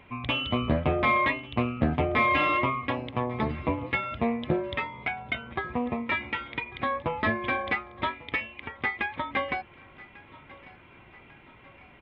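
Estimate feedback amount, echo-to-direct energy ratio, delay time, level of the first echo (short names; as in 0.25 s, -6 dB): 49%, -20.5 dB, 1.145 s, -21.5 dB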